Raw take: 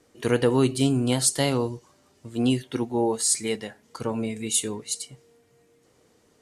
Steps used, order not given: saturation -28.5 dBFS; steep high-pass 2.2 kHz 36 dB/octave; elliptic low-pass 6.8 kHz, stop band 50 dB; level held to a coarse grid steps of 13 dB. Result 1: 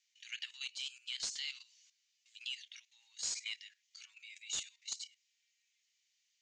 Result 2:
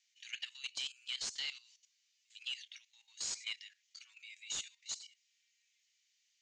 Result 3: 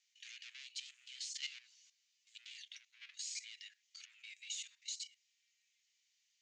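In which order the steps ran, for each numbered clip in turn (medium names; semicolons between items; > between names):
steep high-pass > level held to a coarse grid > saturation > elliptic low-pass; steep high-pass > saturation > elliptic low-pass > level held to a coarse grid; saturation > steep high-pass > level held to a coarse grid > elliptic low-pass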